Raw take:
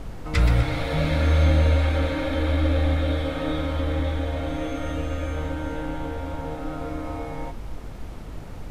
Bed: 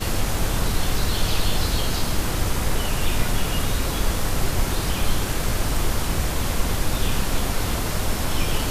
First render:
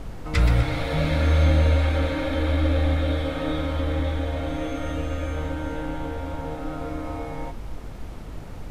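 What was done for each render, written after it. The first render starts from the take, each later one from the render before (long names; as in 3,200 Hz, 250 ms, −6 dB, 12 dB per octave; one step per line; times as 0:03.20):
no processing that can be heard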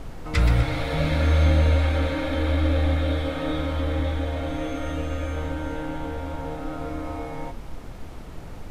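hum removal 50 Hz, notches 12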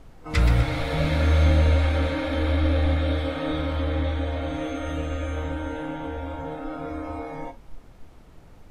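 noise reduction from a noise print 11 dB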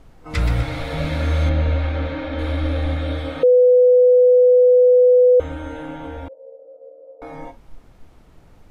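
0:01.49–0:02.39: high-frequency loss of the air 150 metres
0:03.43–0:05.40: beep over 498 Hz −8.5 dBFS
0:06.28–0:07.22: flat-topped band-pass 520 Hz, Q 6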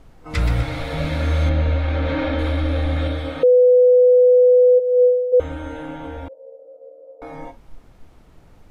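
0:01.88–0:03.08: envelope flattener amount 70%
0:04.78–0:05.32: resonant band-pass 880 Hz → 260 Hz, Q 3.1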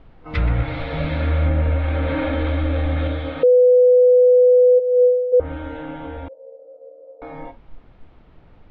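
low-pass filter 3,700 Hz 24 dB per octave
treble cut that deepens with the level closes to 1,200 Hz, closed at −11 dBFS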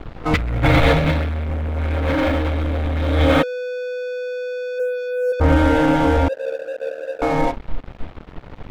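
leveller curve on the samples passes 3
compressor whose output falls as the input rises −17 dBFS, ratio −0.5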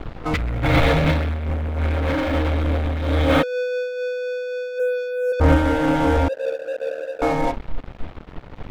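in parallel at −4 dB: soft clipping −20.5 dBFS, distortion −8 dB
on the sum: amplitude modulation by smooth noise, depth 60%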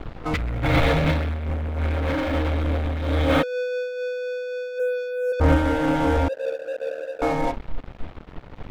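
level −2.5 dB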